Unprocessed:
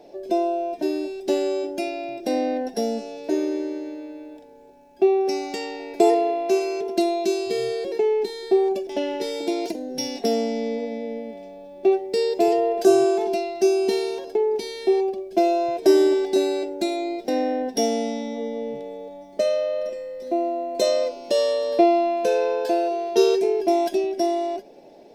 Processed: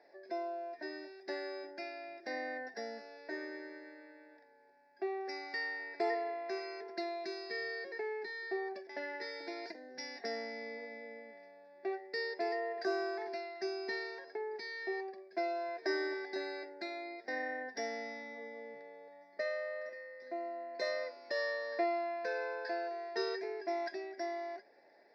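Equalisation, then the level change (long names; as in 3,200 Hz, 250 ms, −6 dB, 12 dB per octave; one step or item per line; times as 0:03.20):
pair of resonant band-passes 3,000 Hz, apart 1.4 octaves
high-frequency loss of the air 380 metres
+9.0 dB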